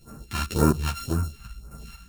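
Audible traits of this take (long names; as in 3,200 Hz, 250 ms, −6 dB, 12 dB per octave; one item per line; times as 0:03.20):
a buzz of ramps at a fixed pitch in blocks of 32 samples
phaser sweep stages 2, 1.9 Hz, lowest notch 350–3,200 Hz
sample-and-hold tremolo 4.1 Hz
a shimmering, thickened sound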